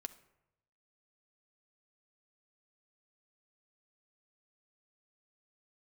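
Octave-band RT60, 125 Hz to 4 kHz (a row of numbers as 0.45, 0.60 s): 1.2, 0.85, 0.90, 0.85, 0.75, 0.50 s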